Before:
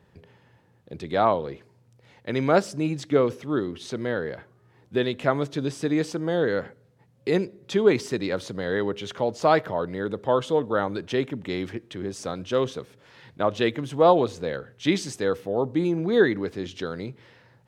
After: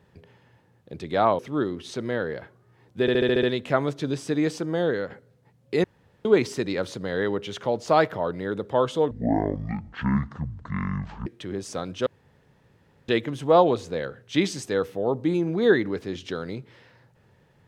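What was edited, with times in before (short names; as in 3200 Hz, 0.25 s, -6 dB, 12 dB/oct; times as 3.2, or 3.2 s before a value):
1.39–3.35 cut
4.97 stutter 0.07 s, 7 plays
6.37–6.64 fade out, to -6.5 dB
7.38–7.79 room tone
10.65–11.77 speed 52%
12.57–13.59 room tone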